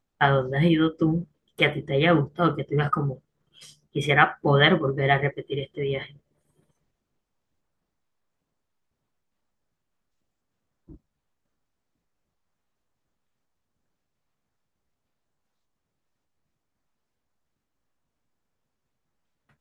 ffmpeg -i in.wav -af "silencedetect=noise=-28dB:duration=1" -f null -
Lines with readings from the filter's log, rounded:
silence_start: 6.03
silence_end: 19.60 | silence_duration: 13.58